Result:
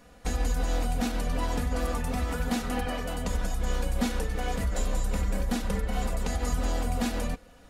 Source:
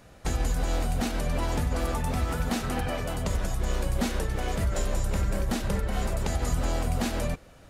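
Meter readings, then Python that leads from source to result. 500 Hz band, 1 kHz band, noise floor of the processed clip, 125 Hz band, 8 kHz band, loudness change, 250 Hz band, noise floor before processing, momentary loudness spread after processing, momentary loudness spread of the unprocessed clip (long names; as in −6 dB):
−1.5 dB, −0.5 dB, −53 dBFS, −3.0 dB, −1.5 dB, −1.0 dB, 0.0 dB, −52 dBFS, 2 LU, 2 LU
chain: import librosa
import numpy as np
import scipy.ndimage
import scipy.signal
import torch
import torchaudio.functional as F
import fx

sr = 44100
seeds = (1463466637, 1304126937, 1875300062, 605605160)

y = x + 0.65 * np.pad(x, (int(4.1 * sr / 1000.0), 0))[:len(x)]
y = y * 10.0 ** (-3.0 / 20.0)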